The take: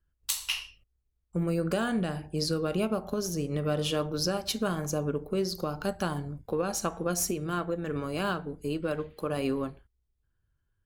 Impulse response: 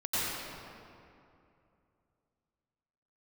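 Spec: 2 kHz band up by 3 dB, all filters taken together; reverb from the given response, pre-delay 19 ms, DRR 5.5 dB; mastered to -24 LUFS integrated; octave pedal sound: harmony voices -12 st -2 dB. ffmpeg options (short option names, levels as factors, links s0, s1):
-filter_complex "[0:a]equalizer=f=2000:t=o:g=4.5,asplit=2[s0][s1];[1:a]atrim=start_sample=2205,adelay=19[s2];[s1][s2]afir=irnorm=-1:irlink=0,volume=0.188[s3];[s0][s3]amix=inputs=2:normalize=0,asplit=2[s4][s5];[s5]asetrate=22050,aresample=44100,atempo=2,volume=0.794[s6];[s4][s6]amix=inputs=2:normalize=0,volume=1.58"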